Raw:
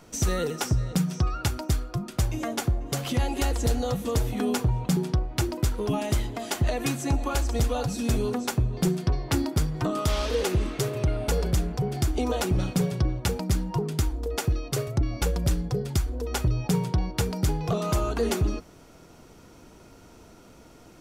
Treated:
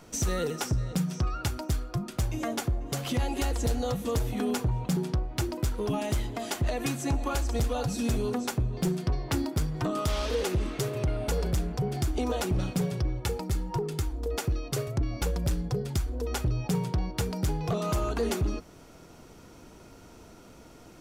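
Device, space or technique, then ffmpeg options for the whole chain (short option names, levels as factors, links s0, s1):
limiter into clipper: -filter_complex "[0:a]asettb=1/sr,asplit=3[s0][s1][s2];[s0]atrim=end=12.974[s3];[s1]atrim=start=12.97:end=14.02,asetpts=PTS-STARTPTS,afade=t=in:d=0.004:c=qsin,afade=t=out:st=1.046:d=0.004:c=qsin,aecho=1:1:2.3:0.5,atrim=end_sample=46305[s4];[s2]atrim=start=14.016[s5];[s3][s4]acrossfade=d=0.004:c1=hsin:c2=qsin[s6];[s6][s5]acrossfade=d=0.004:c1=qsin:c2=hsin,alimiter=limit=0.106:level=0:latency=1:release=338,asoftclip=type=hard:threshold=0.0841"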